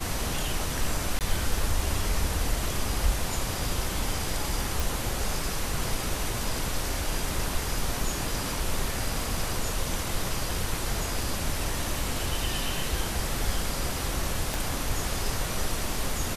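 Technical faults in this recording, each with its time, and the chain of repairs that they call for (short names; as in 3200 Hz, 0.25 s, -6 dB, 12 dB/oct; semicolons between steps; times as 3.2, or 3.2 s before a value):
1.19–1.21 gap 18 ms
4.8 pop
14.54 pop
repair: de-click; interpolate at 1.19, 18 ms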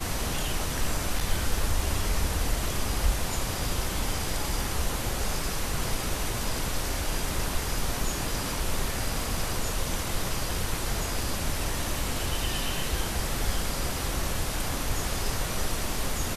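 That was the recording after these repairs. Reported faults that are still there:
14.54 pop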